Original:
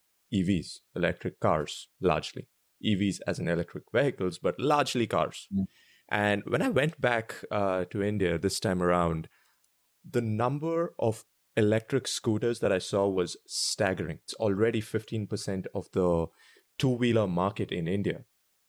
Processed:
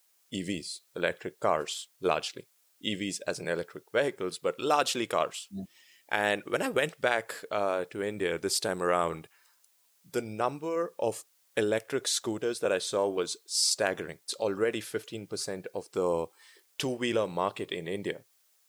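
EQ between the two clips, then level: tone controls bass -14 dB, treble +5 dB; 0.0 dB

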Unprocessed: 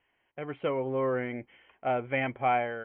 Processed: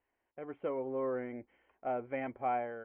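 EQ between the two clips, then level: low-pass 1.2 kHz 6 dB/octave; distance through air 310 m; peaking EQ 140 Hz -11.5 dB 0.59 oct; -4.0 dB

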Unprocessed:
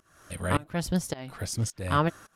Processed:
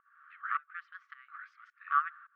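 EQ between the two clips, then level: brick-wall FIR high-pass 1.1 kHz; low-pass 1.6 kHz 24 dB/octave; +1.5 dB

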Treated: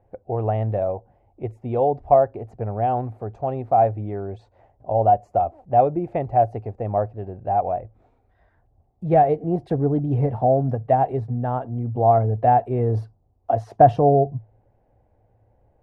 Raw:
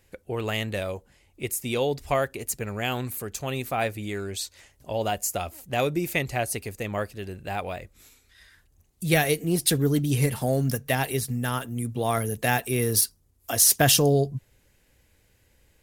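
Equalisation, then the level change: resonant low-pass 740 Hz, resonance Q 4.9; peaking EQ 110 Hz +10.5 dB 0.22 oct; 0.0 dB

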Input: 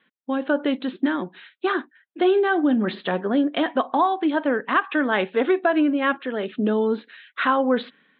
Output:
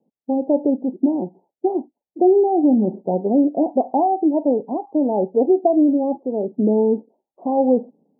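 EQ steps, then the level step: steep low-pass 860 Hz 96 dB/octave; +4.5 dB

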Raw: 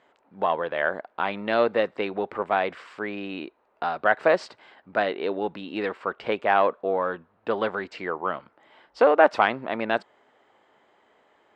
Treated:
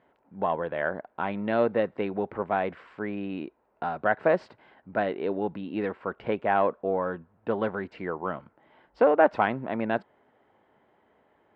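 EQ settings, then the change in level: tone controls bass +9 dB, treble -7 dB; treble shelf 2.9 kHz -10.5 dB; band-stop 1.2 kHz, Q 15; -2.5 dB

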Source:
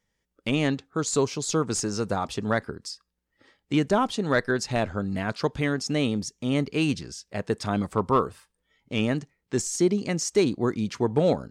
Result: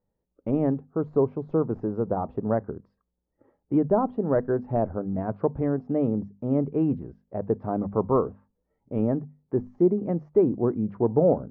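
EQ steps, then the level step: four-pole ladder low-pass 1 kHz, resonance 20%; hum notches 50/100/150/200/250 Hz; +6.0 dB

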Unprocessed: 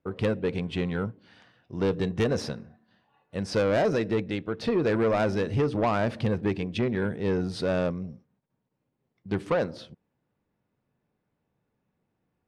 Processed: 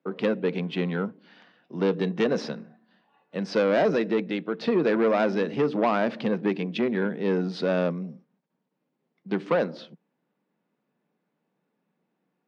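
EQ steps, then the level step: steep high-pass 160 Hz 48 dB/octave; distance through air 210 m; treble shelf 3.8 kHz +8.5 dB; +2.5 dB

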